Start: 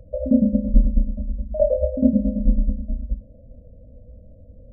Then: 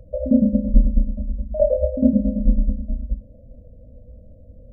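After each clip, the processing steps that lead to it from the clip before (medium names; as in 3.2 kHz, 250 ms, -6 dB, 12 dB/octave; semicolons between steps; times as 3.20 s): de-hum 90.95 Hz, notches 12; trim +1 dB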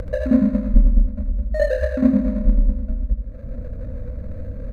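median filter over 41 samples; upward compressor, threshold -16 dBFS; on a send: feedback delay 80 ms, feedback 54%, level -9 dB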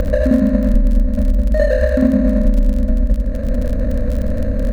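spectral levelling over time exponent 0.6; compression 5:1, threshold -13 dBFS, peak gain reduction 7.5 dB; crackle 28 per s -26 dBFS; trim +4 dB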